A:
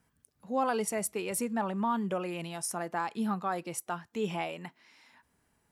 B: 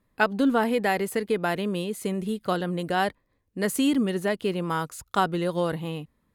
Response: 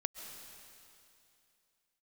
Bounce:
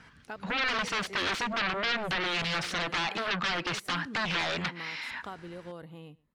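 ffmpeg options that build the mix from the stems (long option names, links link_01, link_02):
-filter_complex "[0:a]acompressor=threshold=-35dB:ratio=16,aeval=exprs='0.0211*sin(PI/2*2.82*val(0)/0.0211)':channel_layout=same,firequalizer=gain_entry='entry(690,0);entry(1400,9);entry(4200,7);entry(7600,-8);entry(14000,-25)':delay=0.05:min_phase=1,volume=2dB,asplit=2[link_01][link_02];[1:a]acompressor=threshold=-40dB:ratio=2,highshelf=frequency=6500:gain=-6.5,adelay=100,volume=-7.5dB,asplit=2[link_03][link_04];[link_04]volume=-24dB[link_05];[link_02]apad=whole_len=284323[link_06];[link_03][link_06]sidechaincompress=threshold=-36dB:ratio=8:attack=16:release=128[link_07];[link_05]aecho=0:1:120:1[link_08];[link_01][link_07][link_08]amix=inputs=3:normalize=0"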